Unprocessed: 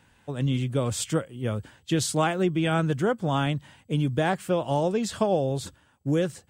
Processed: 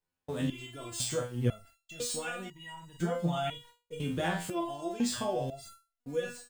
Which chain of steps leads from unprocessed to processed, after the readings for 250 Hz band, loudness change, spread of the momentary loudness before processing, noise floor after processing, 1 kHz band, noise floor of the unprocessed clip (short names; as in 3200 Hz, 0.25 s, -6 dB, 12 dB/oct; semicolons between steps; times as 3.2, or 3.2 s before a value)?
-8.5 dB, -8.0 dB, 7 LU, under -85 dBFS, -8.5 dB, -62 dBFS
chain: median filter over 3 samples; high shelf 4000 Hz +6.5 dB; added noise pink -55 dBFS; gate -40 dBFS, range -34 dB; notch 5800 Hz, Q 27; doubler 42 ms -6 dB; limiter -17.5 dBFS, peak gain reduction 7 dB; stepped resonator 2 Hz 87–950 Hz; gain +6.5 dB